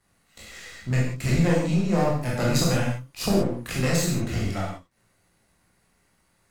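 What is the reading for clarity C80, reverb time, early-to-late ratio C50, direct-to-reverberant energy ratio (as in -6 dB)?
5.0 dB, not exponential, 1.0 dB, -4.5 dB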